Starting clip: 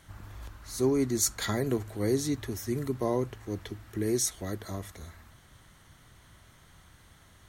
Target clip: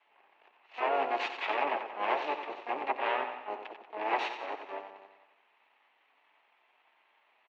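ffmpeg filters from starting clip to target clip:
-filter_complex "[0:a]aeval=exprs='max(val(0),0)':c=same,flanger=delay=6.8:depth=2.2:regen=13:speed=0.64:shape=triangular,aeval=exprs='0.141*(cos(1*acos(clip(val(0)/0.141,-1,1)))-cos(1*PI/2))+0.0316*(cos(4*acos(clip(val(0)/0.141,-1,1)))-cos(4*PI/2))+0.0708*(cos(8*acos(clip(val(0)/0.141,-1,1)))-cos(8*PI/2))':c=same,asplit=2[s0][s1];[s1]aecho=0:1:91|182|273|364|455|546|637:0.376|0.214|0.122|0.0696|0.0397|0.0226|0.0129[s2];[s0][s2]amix=inputs=2:normalize=0,asplit=3[s3][s4][s5];[s4]asetrate=29433,aresample=44100,atempo=1.49831,volume=0.794[s6];[s5]asetrate=88200,aresample=44100,atempo=0.5,volume=0.501[s7];[s3][s6][s7]amix=inputs=3:normalize=0,highpass=f=470:w=0.5412,highpass=f=470:w=1.3066,equalizer=f=510:t=q:w=4:g=-6,equalizer=f=860:t=q:w=4:g=5,equalizer=f=1400:t=q:w=4:g=-6,equalizer=f=2600:t=q:w=4:g=7,lowpass=f=2800:w=0.5412,lowpass=f=2800:w=1.3066"

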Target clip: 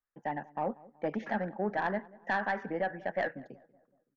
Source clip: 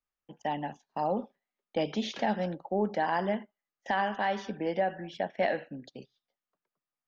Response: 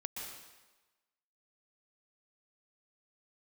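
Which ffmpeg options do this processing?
-filter_complex "[0:a]highshelf=f=2500:t=q:w=3:g=-12.5,aeval=exprs='(tanh(7.94*val(0)+0.15)-tanh(0.15))/7.94':c=same,atempo=1.7,asplit=2[s0][s1];[s1]adelay=188,lowpass=f=1200:p=1,volume=0.0891,asplit=2[s2][s3];[s3]adelay=188,lowpass=f=1200:p=1,volume=0.52,asplit=2[s4][s5];[s5]adelay=188,lowpass=f=1200:p=1,volume=0.52,asplit=2[s6][s7];[s7]adelay=188,lowpass=f=1200:p=1,volume=0.52[s8];[s2][s4][s6][s8]amix=inputs=4:normalize=0[s9];[s0][s9]amix=inputs=2:normalize=0,volume=0.75"

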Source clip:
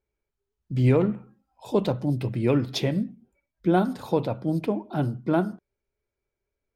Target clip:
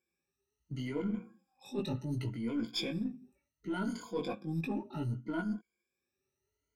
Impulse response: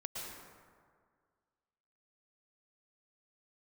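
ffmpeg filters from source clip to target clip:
-filter_complex "[0:a]afftfilt=real='re*pow(10,23/40*sin(2*PI*(1.8*log(max(b,1)*sr/1024/100)/log(2)-(0.68)*(pts-256)/sr)))':imag='im*pow(10,23/40*sin(2*PI*(1.8*log(max(b,1)*sr/1024/100)/log(2)-(0.68)*(pts-256)/sr)))':win_size=1024:overlap=0.75,flanger=delay=17.5:depth=3.7:speed=0.39,equalizer=f=100:t=o:w=0.67:g=-6,equalizer=f=250:t=o:w=0.67:g=4,equalizer=f=630:t=o:w=0.67:g=-9,equalizer=f=2500:t=o:w=0.67:g=4,equalizer=f=6300:t=o:w=0.67:g=7,areverse,acompressor=threshold=0.0355:ratio=10,areverse,highpass=f=60:w=0.5412,highpass=f=60:w=1.3066,asplit=2[s0][s1];[s1]aeval=exprs='clip(val(0),-1,0.00631)':c=same,volume=0.266[s2];[s0][s2]amix=inputs=2:normalize=0,volume=0.596"

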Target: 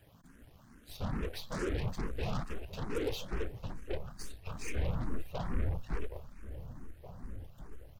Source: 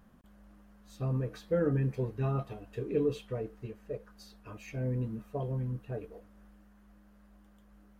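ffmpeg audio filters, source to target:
-filter_complex "[0:a]afftfilt=real='hypot(re,im)*cos(2*PI*random(0))':imag='hypot(re,im)*sin(2*PI*random(1))':win_size=512:overlap=0.75,acrossover=split=180|1900[s0][s1][s2];[s2]acontrast=89[s3];[s0][s1][s3]amix=inputs=3:normalize=0,asoftclip=type=tanh:threshold=0.0188,aeval=exprs='0.0188*(cos(1*acos(clip(val(0)/0.0188,-1,1)))-cos(1*PI/2))+0.00376*(cos(2*acos(clip(val(0)/0.0188,-1,1)))-cos(2*PI/2))+0.00168*(cos(3*acos(clip(val(0)/0.0188,-1,1)))-cos(3*PI/2))+0.00168*(cos(5*acos(clip(val(0)/0.0188,-1,1)))-cos(5*PI/2))+0.00376*(cos(8*acos(clip(val(0)/0.0188,-1,1)))-cos(8*PI/2))':c=same,asubboost=boost=4.5:cutoff=84,asplit=2[s4][s5];[s5]adelay=1691,volume=0.251,highshelf=f=4000:g=-38[s6];[s4][s6]amix=inputs=2:normalize=0,asplit=2[s7][s8];[s8]afreqshift=2.3[s9];[s7][s9]amix=inputs=2:normalize=1,volume=2.24"

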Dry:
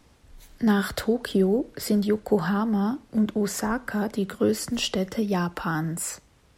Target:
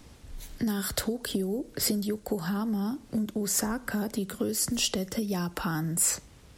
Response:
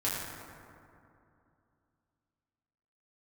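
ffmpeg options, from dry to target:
-filter_complex "[0:a]equalizer=f=1100:t=o:w=2.7:g=-4.5,acrossover=split=5600[s0][s1];[s0]acompressor=threshold=0.0178:ratio=6[s2];[s2][s1]amix=inputs=2:normalize=0,volume=2.24"

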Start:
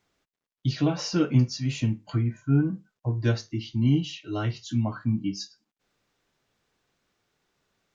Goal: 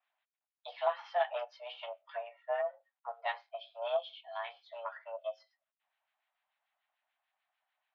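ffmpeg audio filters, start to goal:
-filter_complex "[0:a]aeval=exprs='0.335*(cos(1*acos(clip(val(0)/0.335,-1,1)))-cos(1*PI/2))+0.0188*(cos(3*acos(clip(val(0)/0.335,-1,1)))-cos(3*PI/2))+0.0133*(cos(7*acos(clip(val(0)/0.335,-1,1)))-cos(7*PI/2))+0.00237*(cos(8*acos(clip(val(0)/0.335,-1,1)))-cos(8*PI/2))':c=same,highpass=f=300:t=q:w=0.5412,highpass=f=300:t=q:w=1.307,lowpass=f=3200:t=q:w=0.5176,lowpass=f=3200:t=q:w=0.7071,lowpass=f=3200:t=q:w=1.932,afreqshift=350,acrossover=split=1300[s0][s1];[s0]aeval=exprs='val(0)*(1-0.7/2+0.7/2*cos(2*PI*6.8*n/s))':c=same[s2];[s1]aeval=exprs='val(0)*(1-0.7/2-0.7/2*cos(2*PI*6.8*n/s))':c=same[s3];[s2][s3]amix=inputs=2:normalize=0"

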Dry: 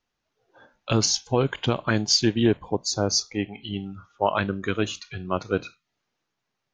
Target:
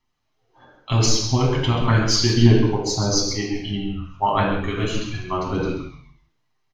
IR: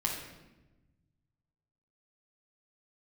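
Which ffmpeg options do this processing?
-filter_complex "[0:a]asplit=5[s0][s1][s2][s3][s4];[s1]adelay=133,afreqshift=-110,volume=0.376[s5];[s2]adelay=266,afreqshift=-220,volume=0.124[s6];[s3]adelay=399,afreqshift=-330,volume=0.0407[s7];[s4]adelay=532,afreqshift=-440,volume=0.0135[s8];[s0][s5][s6][s7][s8]amix=inputs=5:normalize=0,aphaser=in_gain=1:out_gain=1:delay=2.7:decay=0.35:speed=1.6:type=sinusoidal[s9];[1:a]atrim=start_sample=2205,afade=t=out:st=0.26:d=0.01,atrim=end_sample=11907[s10];[s9][s10]afir=irnorm=-1:irlink=0,volume=0.708"

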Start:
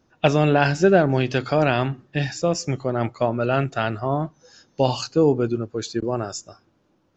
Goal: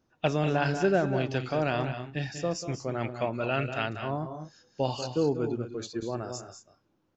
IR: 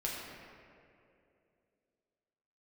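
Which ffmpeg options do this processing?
-filter_complex "[0:a]asettb=1/sr,asplit=3[s0][s1][s2];[s0]atrim=end=2.884[s3];[s1]atrim=start=2.88:end=3.86,asetpts=PTS-STARTPTS,afade=t=in:d=0.004:c=qsin,afade=t=out:st=0.976:d=0.004:c=qsin,equalizer=f=2500:t=o:w=0.85:g=9[s4];[s2]atrim=start=3.856[s5];[s3][s4]acrossfade=d=0.004:c1=hsin:c2=qsin[s6];[s6][s5]acrossfade=d=0.004:c1=qsin:c2=hsin,aecho=1:1:189.5|221.6:0.316|0.251,volume=0.355"

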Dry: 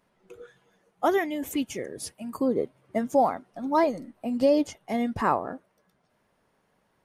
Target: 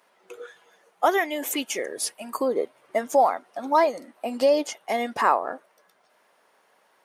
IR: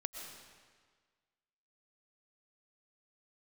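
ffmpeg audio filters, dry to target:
-filter_complex "[0:a]highpass=540,asplit=2[s0][s1];[s1]acompressor=threshold=0.0224:ratio=6,volume=1.26[s2];[s0][s2]amix=inputs=2:normalize=0,volume=1.33"

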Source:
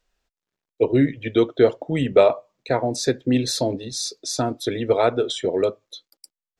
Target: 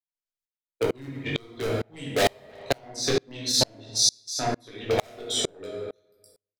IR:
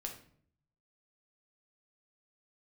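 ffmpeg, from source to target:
-filter_complex "[0:a]adynamicequalizer=threshold=0.02:dfrequency=730:dqfactor=2.3:tfrequency=730:tqfactor=2.3:attack=5:release=100:ratio=0.375:range=3.5:mode=boostabove:tftype=bell,aeval=exprs='1*(cos(1*acos(clip(val(0)/1,-1,1)))-cos(1*PI/2))+0.0794*(cos(7*acos(clip(val(0)/1,-1,1)))-cos(7*PI/2))':c=same,agate=range=0.1:threshold=0.0158:ratio=16:detection=peak,flanger=delay=17:depth=5.7:speed=1.3,asoftclip=type=hard:threshold=0.168[s0];[1:a]atrim=start_sample=2205,asetrate=38808,aresample=44100[s1];[s0][s1]afir=irnorm=-1:irlink=0,acrossover=split=320[s2][s3];[s3]acompressor=threshold=0.0141:ratio=2.5[s4];[s2][s4]amix=inputs=2:normalize=0,asplit=2[s5][s6];[s6]adelay=330,highpass=300,lowpass=3400,asoftclip=type=hard:threshold=0.0631,volume=0.1[s7];[s5][s7]amix=inputs=2:normalize=0,crystalizer=i=9:c=0,asettb=1/sr,asplit=3[s8][s9][s10];[s8]atrim=end=2.784[s11];[s9]atrim=start=2.78:end=4.98,asetpts=PTS-STARTPTS,afade=t=in:d=0.004:c=qsin,afade=t=out:st=2.196:d=0.004:c=qsin,highshelf=f=6700:t=q:w=1.5:g=-6[s12];[s10]atrim=start=4.976[s13];[s11][s12]acrossfade=d=0.004:c1=hsin:c2=qsin[s14];[s14][s13]acrossfade=d=0.004:c1=qsin:c2=hsin,alimiter=level_in=5.96:limit=0.891:release=50:level=0:latency=1,aeval=exprs='val(0)*pow(10,-35*if(lt(mod(-2.2*n/s,1),2*abs(-2.2)/1000),1-mod(-2.2*n/s,1)/(2*abs(-2.2)/1000),(mod(-2.2*n/s,1)-2*abs(-2.2)/1000)/(1-2*abs(-2.2)/1000))/20)':c=same,volume=0.562"

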